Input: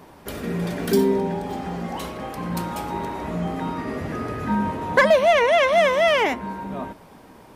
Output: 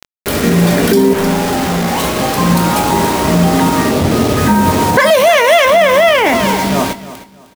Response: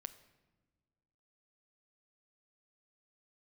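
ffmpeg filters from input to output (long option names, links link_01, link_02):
-filter_complex "[0:a]highpass=frequency=55:width=0.5412,highpass=frequency=55:width=1.3066,asettb=1/sr,asplit=3[link_01][link_02][link_03];[link_01]atrim=end=1.134[link_04];[link_02]atrim=start=1.13:end=2.04,asetpts=PTS-STARTPTS,afade=type=in:duration=0.004:curve=qsin,afade=type=out:start_time=0.906:duration=0.004:curve=qsin,asoftclip=type=hard:threshold=-30dB[link_05];[link_03]atrim=start=2.036[link_06];[link_04][link_05]acrossfade=duration=0.004:curve1=hsin:curve2=qsin[link_07];[link_07][link_06]acrossfade=duration=0.004:curve1=qsin:curve2=hsin,asettb=1/sr,asplit=3[link_08][link_09][link_10];[link_08]atrim=end=3.914[link_11];[link_09]atrim=start=3.91:end=4.37,asetpts=PTS-STARTPTS,afade=type=in:duration=0.004:curve=qsin,afade=type=out:start_time=0.456:duration=0.004:curve=qsin,lowpass=frequency=1100:width=0.5412,lowpass=frequency=1100:width=1.3066[link_12];[link_10]atrim=start=4.366[link_13];[link_11][link_12]acrossfade=duration=0.004:curve1=hsin:curve2=qsin[link_14];[link_14][link_13]acrossfade=duration=0.004:curve1=qsin:curve2=hsin,asettb=1/sr,asplit=3[link_15][link_16][link_17];[link_15]atrim=end=5.004[link_18];[link_16]atrim=start=5:end=5.65,asetpts=PTS-STARTPTS,afade=type=in:duration=0.004:curve=qsin,afade=type=out:start_time=0.646:duration=0.004:curve=qsin,aemphasis=mode=production:type=bsi[link_19];[link_17]atrim=start=5.646[link_20];[link_18][link_19]acrossfade=duration=0.004:curve1=hsin:curve2=qsin[link_21];[link_21][link_20]acrossfade=duration=0.004:curve1=qsin:curve2=hsin,acrusher=bits=5:mix=0:aa=0.000001,asplit=2[link_22][link_23];[link_23]adelay=22,volume=-12.5dB[link_24];[link_22][link_24]amix=inputs=2:normalize=0,aecho=1:1:309|618|927:0.158|0.0412|0.0107,alimiter=level_in=17.5dB:limit=-1dB:release=50:level=0:latency=1,volume=-1dB"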